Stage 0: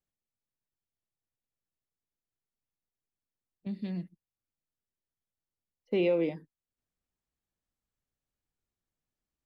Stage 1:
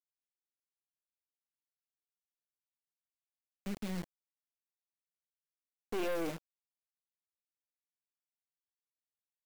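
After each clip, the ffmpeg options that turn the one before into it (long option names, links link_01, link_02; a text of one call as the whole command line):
ffmpeg -i in.wav -af "acrusher=bits=6:mix=0:aa=0.000001,aeval=exprs='(tanh(50.1*val(0)+0.75)-tanh(0.75))/50.1':channel_layout=same,volume=1dB" out.wav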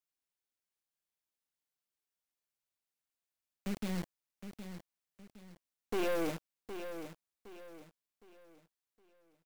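ffmpeg -i in.wav -af "aecho=1:1:764|1528|2292|3056:0.316|0.111|0.0387|0.0136,volume=2dB" out.wav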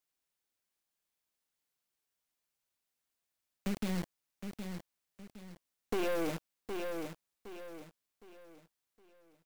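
ffmpeg -i in.wav -af "acompressor=threshold=-34dB:ratio=4,volume=4.5dB" out.wav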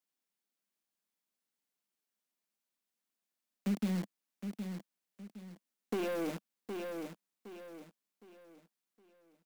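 ffmpeg -i in.wav -af "lowshelf=frequency=140:width_type=q:width=3:gain=-12.5,volume=-3.5dB" out.wav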